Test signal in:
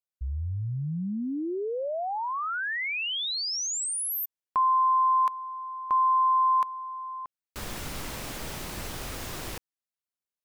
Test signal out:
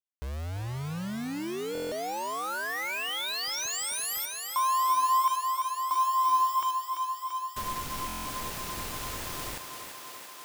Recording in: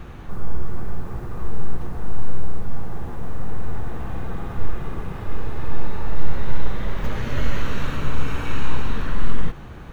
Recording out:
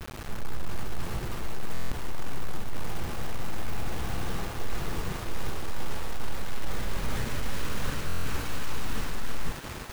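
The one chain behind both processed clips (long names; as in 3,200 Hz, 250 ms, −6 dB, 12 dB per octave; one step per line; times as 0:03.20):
noise gate with hold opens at −29 dBFS, hold 48 ms
reversed playback
downward compressor 8 to 1, threshold −18 dBFS
reversed playback
tape wow and flutter 15 cents
bit reduction 6 bits
feedback echo with a high-pass in the loop 339 ms, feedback 80%, high-pass 220 Hz, level −7 dB
buffer that repeats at 0:01.73/0:08.07, samples 1,024, times 7
every ending faded ahead of time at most 450 dB per second
level −3 dB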